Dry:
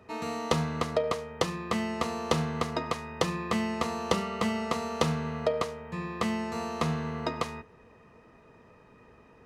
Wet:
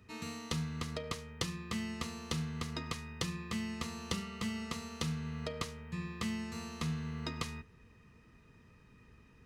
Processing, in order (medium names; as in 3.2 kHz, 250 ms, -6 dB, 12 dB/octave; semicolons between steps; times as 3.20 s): amplifier tone stack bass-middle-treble 6-0-2; gain riding within 3 dB 0.5 s; trim +11.5 dB